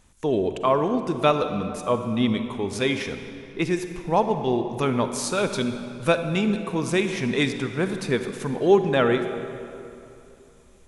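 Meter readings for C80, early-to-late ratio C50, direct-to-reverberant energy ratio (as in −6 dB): 8.5 dB, 8.0 dB, 7.5 dB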